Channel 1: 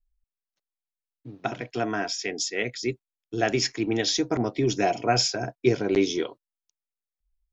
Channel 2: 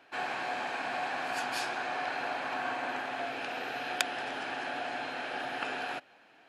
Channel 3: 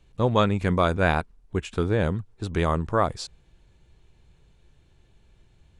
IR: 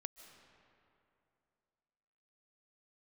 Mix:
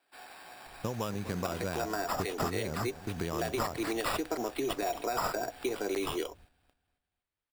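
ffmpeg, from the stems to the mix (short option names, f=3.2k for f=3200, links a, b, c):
-filter_complex "[0:a]volume=1dB[a];[1:a]bass=f=250:g=13,treble=f=4k:g=9,volume=-15.5dB,asplit=2[b][c];[c]volume=-9dB[d];[2:a]acompressor=threshold=-25dB:ratio=6,adelay=650,volume=-2dB,asplit=2[e][f];[f]volume=-16dB[g];[a][b]amix=inputs=2:normalize=0,highpass=390,alimiter=limit=-17dB:level=0:latency=1:release=97,volume=0dB[h];[d][g]amix=inputs=2:normalize=0,aecho=0:1:247|494|741|988|1235:1|0.37|0.137|0.0507|0.0187[i];[e][h][i]amix=inputs=3:normalize=0,acrossover=split=100|1200|4100[j][k][l][m];[j]acompressor=threshold=-52dB:ratio=4[n];[k]acompressor=threshold=-31dB:ratio=4[o];[l]acompressor=threshold=-44dB:ratio=4[p];[m]acompressor=threshold=-30dB:ratio=4[q];[n][o][p][q]amix=inputs=4:normalize=0,acrusher=samples=7:mix=1:aa=0.000001"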